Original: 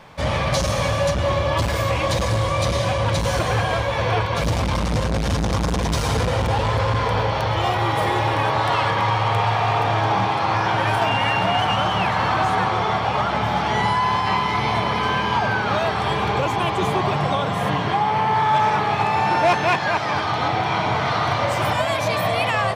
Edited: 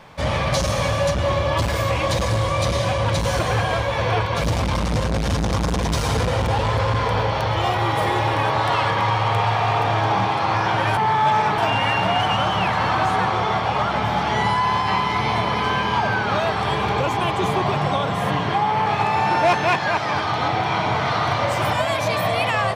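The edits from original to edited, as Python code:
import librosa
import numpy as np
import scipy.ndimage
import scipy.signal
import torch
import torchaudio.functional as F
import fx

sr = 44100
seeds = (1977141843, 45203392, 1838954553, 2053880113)

y = fx.edit(x, sr, fx.move(start_s=18.25, length_s=0.61, to_s=10.97), tone=tone)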